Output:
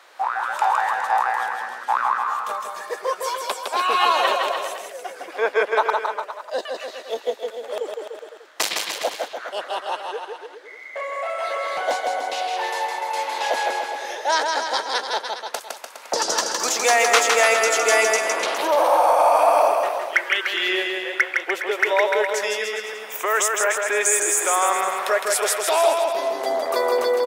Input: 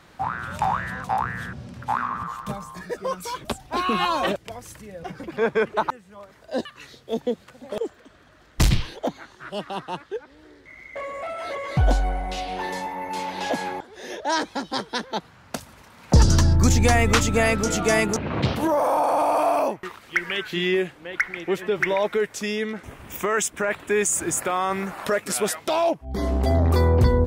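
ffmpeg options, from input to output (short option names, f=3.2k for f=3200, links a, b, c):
-af "highpass=f=480:w=0.5412,highpass=f=480:w=1.3066,aecho=1:1:160|296|411.6|509.9|593.4:0.631|0.398|0.251|0.158|0.1,volume=3.5dB"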